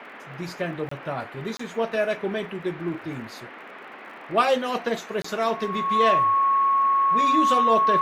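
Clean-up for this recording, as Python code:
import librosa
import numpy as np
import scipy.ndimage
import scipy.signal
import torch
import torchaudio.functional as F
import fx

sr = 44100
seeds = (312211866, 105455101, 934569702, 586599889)

y = fx.fix_declick_ar(x, sr, threshold=6.5)
y = fx.notch(y, sr, hz=1100.0, q=30.0)
y = fx.fix_interpolate(y, sr, at_s=(0.89, 1.57, 5.22), length_ms=24.0)
y = fx.noise_reduce(y, sr, print_start_s=3.49, print_end_s=3.99, reduce_db=26.0)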